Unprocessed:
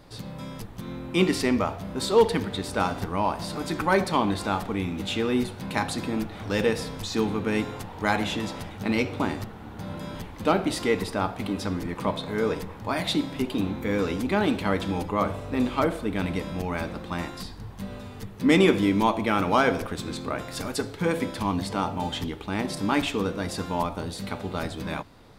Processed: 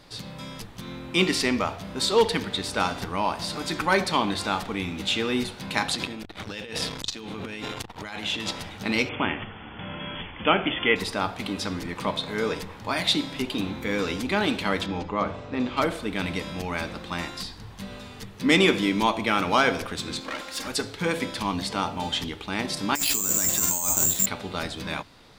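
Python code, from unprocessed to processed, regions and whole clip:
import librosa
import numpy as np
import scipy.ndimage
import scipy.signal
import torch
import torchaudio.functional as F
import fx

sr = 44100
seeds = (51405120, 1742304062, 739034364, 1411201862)

y = fx.chain(x, sr, fx.dynamic_eq(hz=3000.0, q=2.3, threshold_db=-47.0, ratio=4.0, max_db=5),
    fx.over_compress(threshold_db=-32.0, ratio=-1.0),
    fx.transformer_sat(knee_hz=470.0), at=(5.89, 8.51))
y = fx.chain(y, sr, fx.brickwall_lowpass(high_hz=3500.0),
    fx.high_shelf(hz=2400.0, db=11.0), at=(9.09, 10.96))
y = fx.chain(y, sr, fx.lowpass(hz=7100.0, slope=24),
    fx.high_shelf(hz=2700.0, db=-9.5), at=(14.86, 15.77))
y = fx.chain(y, sr, fx.lower_of_two(delay_ms=3.7),
    fx.low_shelf(hz=160.0, db=-10.0), at=(20.2, 20.67))
y = fx.chain(y, sr, fx.notch(hz=470.0, q=6.8),
    fx.over_compress(threshold_db=-33.0, ratio=-1.0),
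    fx.resample_bad(factor=6, down='filtered', up='zero_stuff'), at=(22.95, 24.26))
y = fx.peak_eq(y, sr, hz=4100.0, db=9.0, octaves=2.9)
y = fx.hum_notches(y, sr, base_hz=50, count=2)
y = y * 10.0 ** (-2.5 / 20.0)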